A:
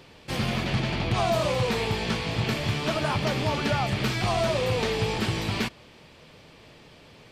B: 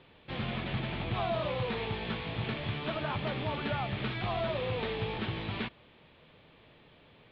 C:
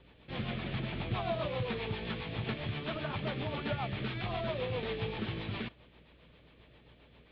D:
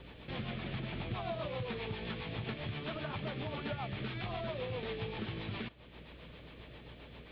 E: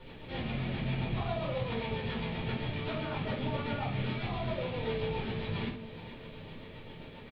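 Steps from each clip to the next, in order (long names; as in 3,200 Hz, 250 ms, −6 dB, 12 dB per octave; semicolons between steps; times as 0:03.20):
elliptic low-pass filter 3,700 Hz, stop band 60 dB; level −7 dB
mains hum 60 Hz, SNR 27 dB; rotating-speaker cabinet horn 7.5 Hz
downward compressor 2 to 1, threshold −55 dBFS, peak gain reduction 14 dB; level +8.5 dB
repeating echo 439 ms, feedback 57%, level −14.5 dB; rectangular room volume 290 cubic metres, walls furnished, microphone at 4.5 metres; level −4.5 dB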